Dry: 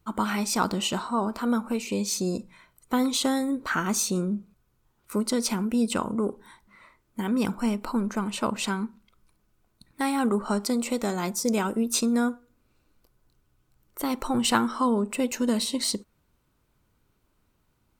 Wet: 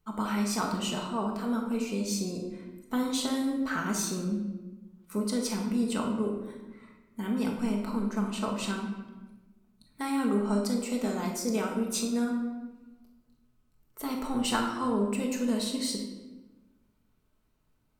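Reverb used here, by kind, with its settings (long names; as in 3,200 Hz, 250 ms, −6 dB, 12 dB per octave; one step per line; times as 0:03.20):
rectangular room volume 680 cubic metres, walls mixed, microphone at 1.5 metres
level −8 dB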